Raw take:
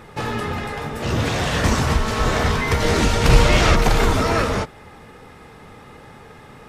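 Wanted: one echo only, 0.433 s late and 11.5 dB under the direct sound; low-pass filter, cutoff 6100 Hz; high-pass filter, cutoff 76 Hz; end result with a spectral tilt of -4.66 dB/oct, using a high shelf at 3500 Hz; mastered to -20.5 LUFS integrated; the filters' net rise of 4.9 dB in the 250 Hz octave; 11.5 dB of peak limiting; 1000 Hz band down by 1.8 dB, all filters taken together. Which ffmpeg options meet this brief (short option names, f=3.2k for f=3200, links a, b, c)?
-af "highpass=76,lowpass=6.1k,equalizer=f=250:t=o:g=6.5,equalizer=f=1k:t=o:g=-3.5,highshelf=f=3.5k:g=8,alimiter=limit=-14.5dB:level=0:latency=1,aecho=1:1:433:0.266,volume=3dB"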